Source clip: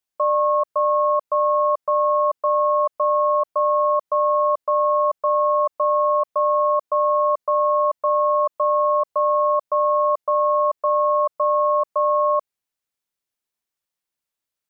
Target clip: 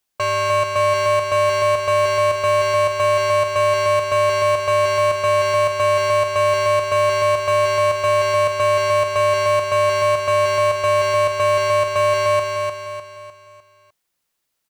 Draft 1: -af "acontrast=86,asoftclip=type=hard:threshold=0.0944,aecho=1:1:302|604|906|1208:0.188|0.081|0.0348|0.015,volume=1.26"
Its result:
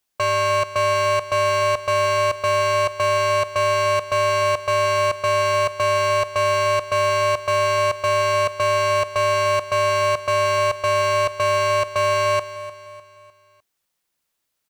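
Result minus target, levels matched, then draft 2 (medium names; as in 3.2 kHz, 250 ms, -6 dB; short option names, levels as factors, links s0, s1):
echo-to-direct -10 dB
-af "acontrast=86,asoftclip=type=hard:threshold=0.0944,aecho=1:1:302|604|906|1208|1510:0.596|0.256|0.11|0.0474|0.0204,volume=1.26"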